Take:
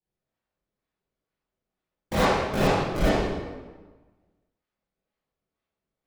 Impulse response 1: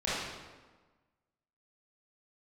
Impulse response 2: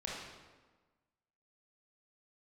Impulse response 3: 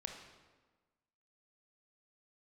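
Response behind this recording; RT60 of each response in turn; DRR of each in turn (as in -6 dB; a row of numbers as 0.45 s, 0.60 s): 1; 1.3 s, 1.3 s, 1.3 s; -10.5 dB, -5.0 dB, 2.5 dB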